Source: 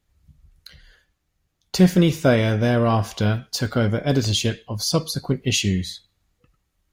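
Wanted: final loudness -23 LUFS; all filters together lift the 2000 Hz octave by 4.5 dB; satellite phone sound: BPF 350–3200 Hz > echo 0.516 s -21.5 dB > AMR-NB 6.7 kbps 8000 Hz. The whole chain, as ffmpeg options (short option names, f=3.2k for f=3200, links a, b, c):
-af "highpass=350,lowpass=3.2k,equalizer=f=2k:t=o:g=7,aecho=1:1:516:0.0841,volume=3dB" -ar 8000 -c:a libopencore_amrnb -b:a 6700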